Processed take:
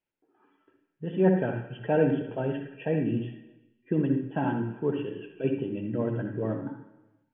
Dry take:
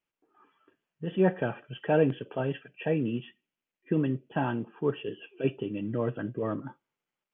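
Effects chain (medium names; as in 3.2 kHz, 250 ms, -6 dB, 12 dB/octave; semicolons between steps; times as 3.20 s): low-pass 2.1 kHz 6 dB/octave; band-stop 1.2 kHz, Q 5.2; on a send: bass shelf 160 Hz +4.5 dB + reverberation RT60 1.1 s, pre-delay 60 ms, DRR 4.5 dB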